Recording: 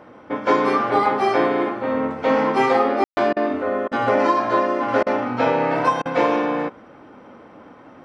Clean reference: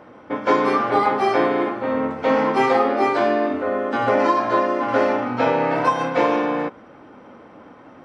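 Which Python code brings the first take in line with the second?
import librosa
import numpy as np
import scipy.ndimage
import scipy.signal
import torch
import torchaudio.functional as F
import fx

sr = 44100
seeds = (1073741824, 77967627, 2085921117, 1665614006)

y = fx.fix_ambience(x, sr, seeds[0], print_start_s=7.47, print_end_s=7.97, start_s=3.04, end_s=3.17)
y = fx.fix_interpolate(y, sr, at_s=(3.33, 3.88, 5.03, 6.02), length_ms=34.0)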